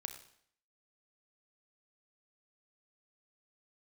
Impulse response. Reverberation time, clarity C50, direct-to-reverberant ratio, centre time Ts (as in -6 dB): 0.65 s, 9.5 dB, 7.0 dB, 14 ms